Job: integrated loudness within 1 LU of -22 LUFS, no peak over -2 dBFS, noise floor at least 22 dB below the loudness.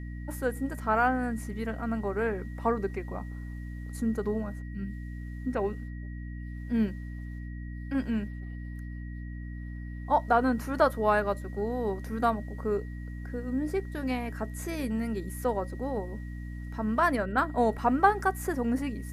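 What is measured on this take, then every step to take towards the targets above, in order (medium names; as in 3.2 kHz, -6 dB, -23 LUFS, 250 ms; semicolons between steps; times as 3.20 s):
hum 60 Hz; highest harmonic 300 Hz; hum level -36 dBFS; steady tone 1.9 kHz; tone level -52 dBFS; loudness -31.0 LUFS; peak level -8.5 dBFS; loudness target -22.0 LUFS
-> hum notches 60/120/180/240/300 Hz; band-stop 1.9 kHz, Q 30; trim +9 dB; peak limiter -2 dBFS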